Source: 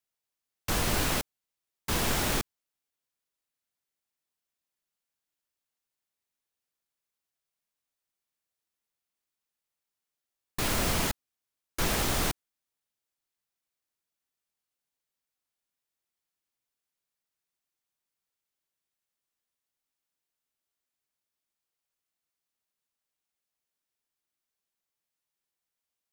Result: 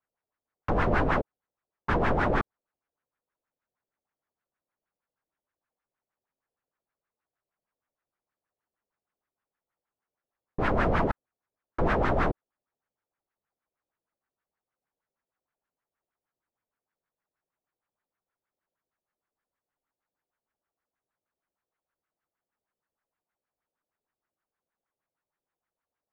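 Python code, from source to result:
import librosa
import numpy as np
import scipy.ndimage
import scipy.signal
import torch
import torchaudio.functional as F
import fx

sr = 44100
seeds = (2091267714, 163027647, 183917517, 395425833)

y = fx.filter_lfo_lowpass(x, sr, shape='sine', hz=6.4, low_hz=500.0, high_hz=1700.0, q=2.3)
y = y * 10.0 ** (3.5 / 20.0)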